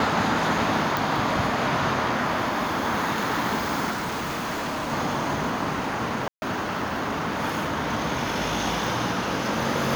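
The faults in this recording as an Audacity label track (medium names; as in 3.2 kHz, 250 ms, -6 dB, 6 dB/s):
0.970000	0.970000	pop
3.900000	4.930000	clipped -25.5 dBFS
6.280000	6.420000	dropout 140 ms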